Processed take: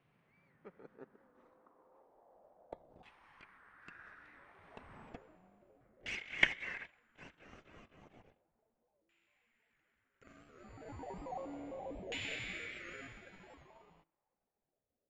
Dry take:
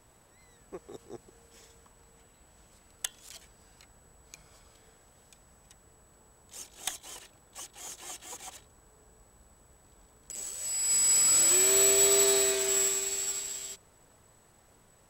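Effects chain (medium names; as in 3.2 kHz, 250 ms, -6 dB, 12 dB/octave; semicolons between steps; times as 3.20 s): Doppler pass-by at 4.99 s, 36 m/s, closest 5.6 m; high-pass sweep 150 Hz -> 2.3 kHz, 0.55–4.54 s; on a send at -23 dB: reverberation RT60 0.60 s, pre-delay 58 ms; on the sum: time-frequency box 5.81–6.83 s, 1–2.3 kHz +9 dB; in parallel at -10 dB: decimation with a swept rate 37×, swing 60% 0.41 Hz; on the sum: LFO low-pass saw down 0.33 Hz 550–2700 Hz; warped record 78 rpm, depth 100 cents; trim +16 dB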